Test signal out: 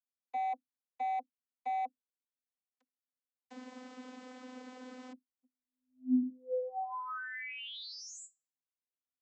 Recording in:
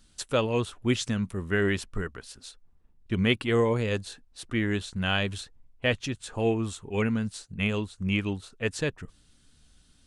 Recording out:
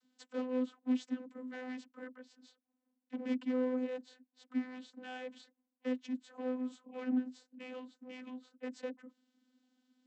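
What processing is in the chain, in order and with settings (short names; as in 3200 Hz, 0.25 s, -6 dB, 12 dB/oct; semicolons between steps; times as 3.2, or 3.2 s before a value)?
hard clip -27 dBFS; vocoder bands 32, saw 254 Hz; gain -6 dB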